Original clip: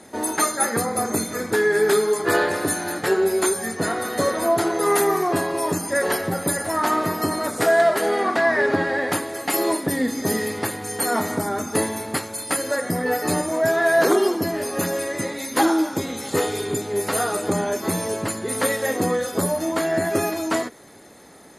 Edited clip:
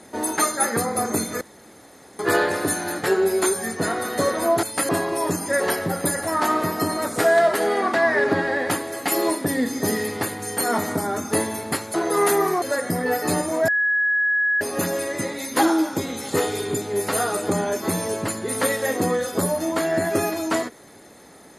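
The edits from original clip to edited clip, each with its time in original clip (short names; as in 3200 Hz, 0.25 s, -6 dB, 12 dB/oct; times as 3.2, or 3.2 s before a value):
1.41–2.19 room tone
4.63–5.31 swap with 12.36–12.62
13.68–14.61 bleep 1680 Hz -17.5 dBFS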